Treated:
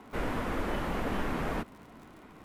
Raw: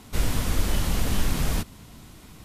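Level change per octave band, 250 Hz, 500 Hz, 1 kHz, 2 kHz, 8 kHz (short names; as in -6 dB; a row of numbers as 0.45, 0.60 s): -3.0, +1.0, +1.0, -2.0, -20.0 dB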